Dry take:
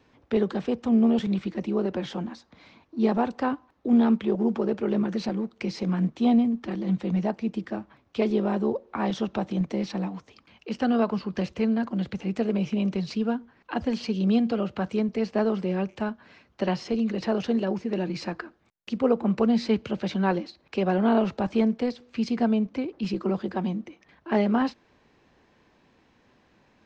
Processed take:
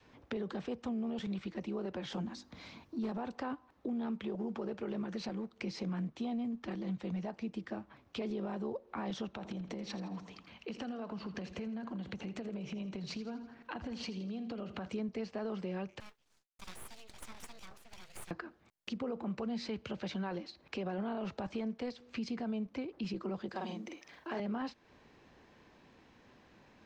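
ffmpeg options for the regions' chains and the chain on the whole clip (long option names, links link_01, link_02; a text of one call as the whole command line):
ffmpeg -i in.wav -filter_complex "[0:a]asettb=1/sr,asplit=3[link_01][link_02][link_03];[link_01]atrim=end=2.124[link_04];[link_02]atrim=start=2.12:end=3.12,asetpts=PTS-STARTPTS,afade=type=in:duration=0.004:curve=qsin,afade=type=out:start_time=0.996:duration=0.004:curve=qsin,bass=frequency=250:gain=5,treble=frequency=4000:gain=7,bandreject=frequency=50:width_type=h:width=6,bandreject=frequency=100:width_type=h:width=6,bandreject=frequency=150:width_type=h:width=6,bandreject=frequency=200:width_type=h:width=6,bandreject=frequency=250:width_type=h:width=6,bandreject=frequency=300:width_type=h:width=6,bandreject=frequency=350:width_type=h:width=6,volume=14.5dB,asoftclip=hard,volume=-14.5dB[link_05];[link_03]atrim=start=3.116[link_06];[link_04][link_05]acrossfade=duration=0.004:curve1=hsin:curve2=qsin[link_07];[link_07][link_06]acrossfade=duration=0.004:curve1=qsin:curve2=hsin,asettb=1/sr,asplit=3[link_08][link_09][link_10];[link_08]atrim=end=9.284[link_11];[link_09]atrim=start=9.28:end=14.86,asetpts=PTS-STARTPTS,afade=type=in:duration=0.004:curve=qsin,afade=type=out:start_time=5.576:duration=0.004:curve=qsin,bandreject=frequency=5000:width=19,acompressor=threshold=-33dB:ratio=6:attack=3.2:release=140:knee=1:detection=peak,aecho=1:1:82|164|246|328|410:0.224|0.11|0.0538|0.0263|0.0129,atrim=end_sample=246078[link_12];[link_10]atrim=start=14.856[link_13];[link_11][link_12]acrossfade=duration=0.004:curve1=hsin:curve2=qsin[link_14];[link_14][link_13]acrossfade=duration=0.004:curve1=qsin:curve2=hsin,asettb=1/sr,asplit=3[link_15][link_16][link_17];[link_15]atrim=end=16.004[link_18];[link_16]atrim=start=16:end=18.31,asetpts=PTS-STARTPTS,afade=type=in:duration=0.004:curve=qsin,afade=type=out:start_time=2.306:duration=0.004:curve=qsin,agate=range=-33dB:threshold=-47dB:ratio=3:release=100:detection=peak,aderivative,aeval=exprs='abs(val(0))':channel_layout=same[link_19];[link_17]atrim=start=18.306[link_20];[link_18][link_19]acrossfade=duration=0.004:curve1=hsin:curve2=qsin[link_21];[link_21][link_20]acrossfade=duration=0.004:curve1=qsin:curve2=hsin,asettb=1/sr,asplit=3[link_22][link_23][link_24];[link_22]atrim=end=23.494[link_25];[link_23]atrim=start=23.49:end=24.4,asetpts=PTS-STARTPTS,afade=type=in:duration=0.004:curve=qsin,afade=type=out:start_time=0.906:duration=0.004:curve=qsin,bass=frequency=250:gain=-10,treble=frequency=4000:gain=8,asplit=2[link_26][link_27];[link_27]adelay=46,volume=-3.5dB[link_28];[link_26][link_28]amix=inputs=2:normalize=0,atrim=end_sample=40131[link_29];[link_24]atrim=start=24.396[link_30];[link_25][link_29]acrossfade=duration=0.004:curve1=hsin:curve2=qsin[link_31];[link_31][link_30]acrossfade=duration=0.004:curve1=qsin:curve2=hsin,adynamicequalizer=threshold=0.02:dfrequency=260:dqfactor=0.73:tfrequency=260:tqfactor=0.73:attack=5:release=100:ratio=0.375:range=2.5:mode=cutabove:tftype=bell,alimiter=limit=-21.5dB:level=0:latency=1:release=35,acompressor=threshold=-42dB:ratio=2" out.wav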